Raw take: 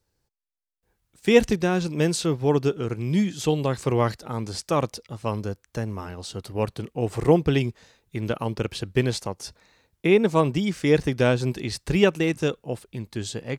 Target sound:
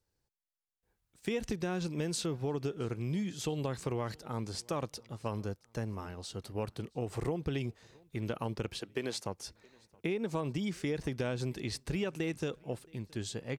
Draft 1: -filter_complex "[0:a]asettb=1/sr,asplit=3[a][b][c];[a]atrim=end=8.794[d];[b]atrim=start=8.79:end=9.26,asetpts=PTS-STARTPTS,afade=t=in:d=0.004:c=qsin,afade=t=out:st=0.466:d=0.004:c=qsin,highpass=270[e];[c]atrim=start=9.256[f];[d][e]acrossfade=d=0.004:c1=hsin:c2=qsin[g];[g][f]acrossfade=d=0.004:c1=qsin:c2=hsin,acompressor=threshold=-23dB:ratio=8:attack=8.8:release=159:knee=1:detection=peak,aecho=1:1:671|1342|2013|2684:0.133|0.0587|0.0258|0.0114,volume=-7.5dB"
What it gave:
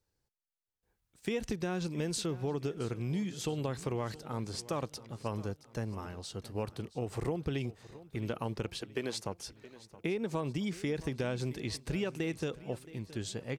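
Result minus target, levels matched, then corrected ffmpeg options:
echo-to-direct +9.5 dB
-filter_complex "[0:a]asettb=1/sr,asplit=3[a][b][c];[a]atrim=end=8.794[d];[b]atrim=start=8.79:end=9.26,asetpts=PTS-STARTPTS,afade=t=in:d=0.004:c=qsin,afade=t=out:st=0.466:d=0.004:c=qsin,highpass=270[e];[c]atrim=start=9.256[f];[d][e]acrossfade=d=0.004:c1=hsin:c2=qsin[g];[g][f]acrossfade=d=0.004:c1=qsin:c2=hsin,acompressor=threshold=-23dB:ratio=8:attack=8.8:release=159:knee=1:detection=peak,aecho=1:1:671|1342:0.0447|0.0197,volume=-7.5dB"

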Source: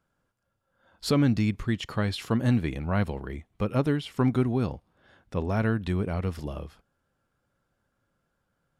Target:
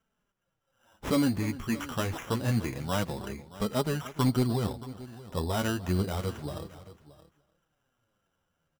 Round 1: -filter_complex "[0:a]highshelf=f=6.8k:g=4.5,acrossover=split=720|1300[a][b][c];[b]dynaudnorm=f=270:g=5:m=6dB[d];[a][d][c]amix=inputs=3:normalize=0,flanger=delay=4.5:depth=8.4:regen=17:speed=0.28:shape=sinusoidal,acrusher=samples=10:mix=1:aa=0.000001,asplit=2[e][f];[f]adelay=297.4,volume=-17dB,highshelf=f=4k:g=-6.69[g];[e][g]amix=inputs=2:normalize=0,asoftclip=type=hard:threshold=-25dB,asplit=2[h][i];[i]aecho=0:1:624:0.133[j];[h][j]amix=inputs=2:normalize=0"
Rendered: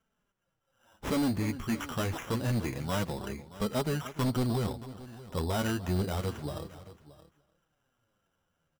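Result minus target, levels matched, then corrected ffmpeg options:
hard clip: distortion +12 dB
-filter_complex "[0:a]highshelf=f=6.8k:g=4.5,acrossover=split=720|1300[a][b][c];[b]dynaudnorm=f=270:g=5:m=6dB[d];[a][d][c]amix=inputs=3:normalize=0,flanger=delay=4.5:depth=8.4:regen=17:speed=0.28:shape=sinusoidal,acrusher=samples=10:mix=1:aa=0.000001,asplit=2[e][f];[f]adelay=297.4,volume=-17dB,highshelf=f=4k:g=-6.69[g];[e][g]amix=inputs=2:normalize=0,asoftclip=type=hard:threshold=-18dB,asplit=2[h][i];[i]aecho=0:1:624:0.133[j];[h][j]amix=inputs=2:normalize=0"

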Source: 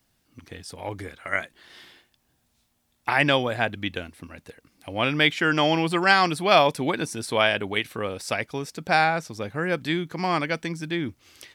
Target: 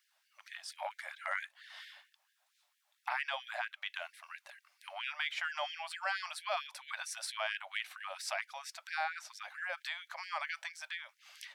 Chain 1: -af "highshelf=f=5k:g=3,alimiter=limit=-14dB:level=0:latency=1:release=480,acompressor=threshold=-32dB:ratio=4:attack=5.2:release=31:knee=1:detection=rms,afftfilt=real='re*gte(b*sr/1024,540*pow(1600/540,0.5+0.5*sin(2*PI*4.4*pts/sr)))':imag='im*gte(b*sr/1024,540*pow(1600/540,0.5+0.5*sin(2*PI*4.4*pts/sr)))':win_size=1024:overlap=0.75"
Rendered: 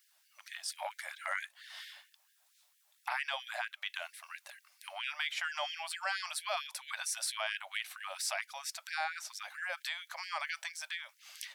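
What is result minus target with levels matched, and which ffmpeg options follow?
8000 Hz band +6.5 dB
-af "highshelf=f=5k:g=-9,alimiter=limit=-14dB:level=0:latency=1:release=480,acompressor=threshold=-32dB:ratio=4:attack=5.2:release=31:knee=1:detection=rms,afftfilt=real='re*gte(b*sr/1024,540*pow(1600/540,0.5+0.5*sin(2*PI*4.4*pts/sr)))':imag='im*gte(b*sr/1024,540*pow(1600/540,0.5+0.5*sin(2*PI*4.4*pts/sr)))':win_size=1024:overlap=0.75"

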